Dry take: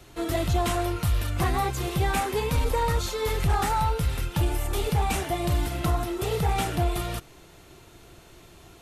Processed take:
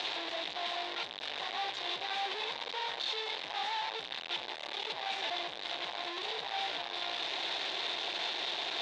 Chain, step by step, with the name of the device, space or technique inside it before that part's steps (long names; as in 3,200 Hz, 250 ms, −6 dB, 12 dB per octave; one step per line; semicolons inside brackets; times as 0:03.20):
home computer beeper (sign of each sample alone; loudspeaker in its box 710–4,300 Hz, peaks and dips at 770 Hz +3 dB, 1,300 Hz −9 dB, 3,700 Hz +10 dB)
level −7 dB